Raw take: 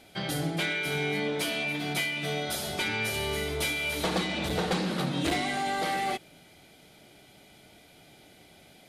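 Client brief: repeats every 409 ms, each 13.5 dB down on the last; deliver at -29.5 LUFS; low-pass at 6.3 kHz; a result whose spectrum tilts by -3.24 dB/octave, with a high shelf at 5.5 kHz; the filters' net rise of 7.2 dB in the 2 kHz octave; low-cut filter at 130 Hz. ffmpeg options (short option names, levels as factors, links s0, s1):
-af "highpass=130,lowpass=6300,equalizer=f=2000:t=o:g=8,highshelf=f=5500:g=5,aecho=1:1:409|818:0.211|0.0444,volume=0.596"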